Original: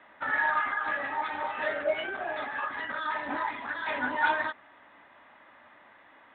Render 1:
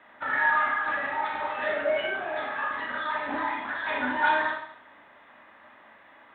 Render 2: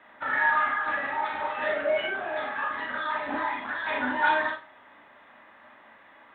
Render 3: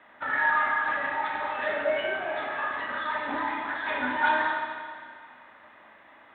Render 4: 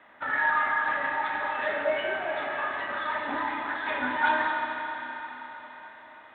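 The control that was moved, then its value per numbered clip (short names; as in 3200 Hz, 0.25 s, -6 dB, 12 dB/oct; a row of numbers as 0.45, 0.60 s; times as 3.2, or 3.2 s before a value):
Schroeder reverb, RT60: 0.68, 0.3, 2, 4.4 s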